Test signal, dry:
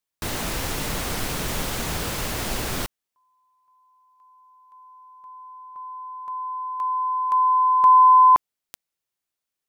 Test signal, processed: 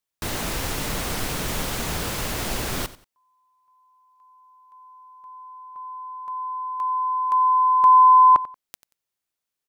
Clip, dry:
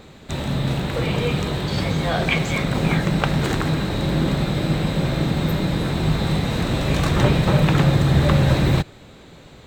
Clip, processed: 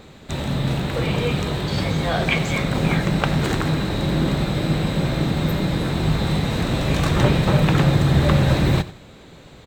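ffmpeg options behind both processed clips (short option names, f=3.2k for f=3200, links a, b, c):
-af "aecho=1:1:91|182:0.141|0.0367"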